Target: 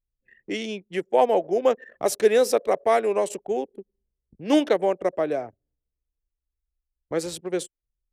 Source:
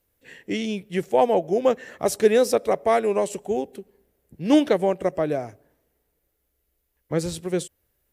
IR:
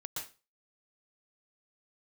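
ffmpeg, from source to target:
-filter_complex "[0:a]anlmdn=1.58,acrossover=split=250|2600[a][b][c];[a]acompressor=threshold=-48dB:ratio=6[d];[d][b][c]amix=inputs=3:normalize=0"

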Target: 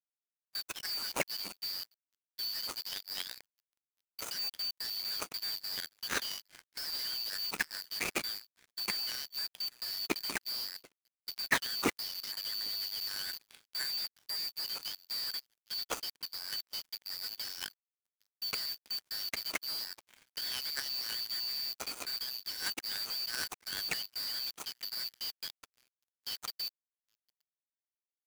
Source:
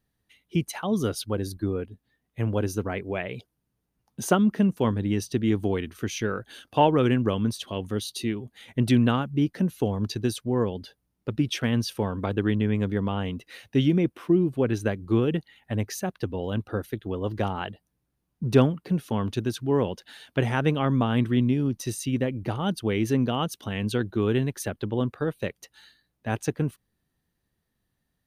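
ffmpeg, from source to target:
-filter_complex "[0:a]afftfilt=real='real(if(lt(b,272),68*(eq(floor(b/68),0)*3+eq(floor(b/68),1)*2+eq(floor(b/68),2)*1+eq(floor(b/68),3)*0)+mod(b,68),b),0)':imag='imag(if(lt(b,272),68*(eq(floor(b/68),0)*3+eq(floor(b/68),1)*2+eq(floor(b/68),2)*1+eq(floor(b/68),3)*0)+mod(b,68),b),0)':win_size=2048:overlap=0.75,asplit=2[a][b];[b]aecho=0:1:802:0.0794[c];[a][c]amix=inputs=2:normalize=0,alimiter=limit=-15dB:level=0:latency=1:release=104,equalizer=f=7.4k:t=o:w=0.26:g=10,asoftclip=type=hard:threshold=-27dB,acrossover=split=170 3000:gain=0.0794 1 0.224[d][e][f];[d][e][f]amix=inputs=3:normalize=0,acrusher=bits=3:mode=log:mix=0:aa=0.000001,aeval=exprs='sgn(val(0))*max(abs(val(0))-0.00376,0)':c=same,aeval=exprs='0.0501*(cos(1*acos(clip(val(0)/0.0501,-1,1)))-cos(1*PI/2))+0.00631*(cos(7*acos(clip(val(0)/0.0501,-1,1)))-cos(7*PI/2))':c=same,volume=8.5dB"

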